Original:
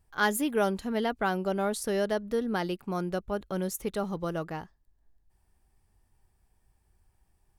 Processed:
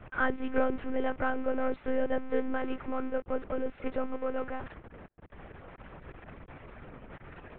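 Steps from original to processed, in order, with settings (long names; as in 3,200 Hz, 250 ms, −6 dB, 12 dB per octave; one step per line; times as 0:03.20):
converter with a step at zero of −31 dBFS
loudspeaker in its box 130–2,200 Hz, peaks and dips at 170 Hz −5 dB, 280 Hz −8 dB, 880 Hz −9 dB, 1,800 Hz −4 dB
one-pitch LPC vocoder at 8 kHz 260 Hz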